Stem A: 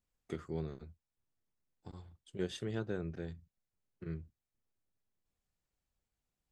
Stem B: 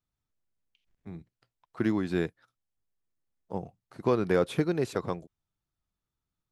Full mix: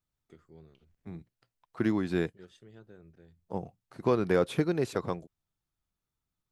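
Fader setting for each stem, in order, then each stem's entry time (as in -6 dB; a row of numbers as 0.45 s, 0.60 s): -15.0 dB, -0.5 dB; 0.00 s, 0.00 s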